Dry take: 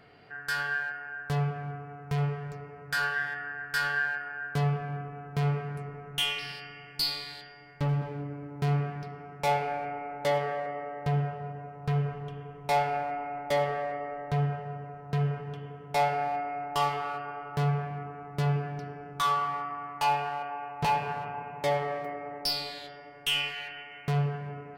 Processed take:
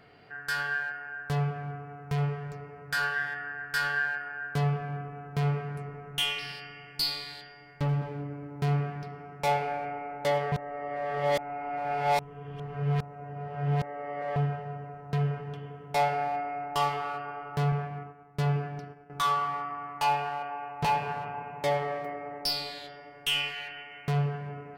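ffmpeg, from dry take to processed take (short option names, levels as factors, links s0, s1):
-filter_complex "[0:a]asettb=1/sr,asplit=3[s0][s1][s2];[s0]atrim=end=17.724[s3];[s1]atrim=start=17.72:end=19.1,asetpts=PTS-STARTPTS,afade=t=in:d=0.004:c=qsin,afade=t=out:st=1.376:d=0.004:c=qsin,agate=range=0.0224:threshold=0.0178:ratio=3:release=100:detection=peak[s4];[s2]atrim=start=19.096[s5];[s3][s4]acrossfade=d=0.004:c1=hsin:c2=qsin[s6];[s6][s5]acrossfade=d=0.004:c1=qsin:c2=hsin,asplit=3[s7][s8][s9];[s7]atrim=end=10.522[s10];[s8]atrim=start=10.518:end=14.362,asetpts=PTS-STARTPTS,areverse[s11];[s9]atrim=start=14.358[s12];[s10][s11]acrossfade=d=0.004:c1=hsin:c2=hsin[s13];[s13][s12]acrossfade=d=0.004:c1=hsin:c2=hsin"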